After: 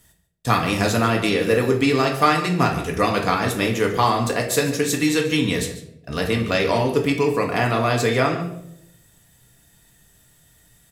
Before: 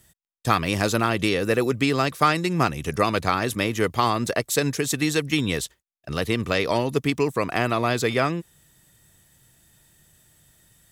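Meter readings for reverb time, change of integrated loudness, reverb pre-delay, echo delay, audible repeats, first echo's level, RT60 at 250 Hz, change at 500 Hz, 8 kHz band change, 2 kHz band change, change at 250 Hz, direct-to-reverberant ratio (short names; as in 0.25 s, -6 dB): 0.80 s, +3.0 dB, 4 ms, 0.144 s, 1, -14.0 dB, 0.95 s, +3.5 dB, +2.0 dB, +2.5 dB, +3.5 dB, 0.5 dB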